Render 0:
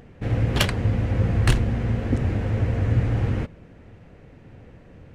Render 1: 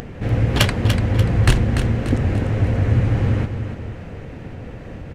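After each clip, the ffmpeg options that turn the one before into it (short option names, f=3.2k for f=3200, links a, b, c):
-af "acompressor=mode=upward:threshold=-28dB:ratio=2.5,aecho=1:1:292|584|876|1168|1460:0.398|0.175|0.0771|0.0339|0.0149,volume=4dB"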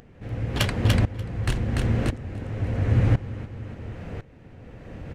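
-af "aeval=exprs='val(0)*pow(10,-18*if(lt(mod(-0.95*n/s,1),2*abs(-0.95)/1000),1-mod(-0.95*n/s,1)/(2*abs(-0.95)/1000),(mod(-0.95*n/s,1)-2*abs(-0.95)/1000)/(1-2*abs(-0.95)/1000))/20)':c=same"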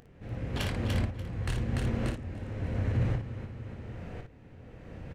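-filter_complex "[0:a]alimiter=limit=-15.5dB:level=0:latency=1:release=37,asplit=2[a][b];[b]aecho=0:1:23|57:0.335|0.501[c];[a][c]amix=inputs=2:normalize=0,volume=-6.5dB"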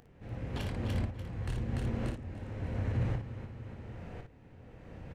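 -filter_complex "[0:a]equalizer=f=880:t=o:w=0.52:g=3,acrossover=split=610[a][b];[b]alimiter=level_in=5.5dB:limit=-24dB:level=0:latency=1:release=327,volume=-5.5dB[c];[a][c]amix=inputs=2:normalize=0,volume=-3.5dB"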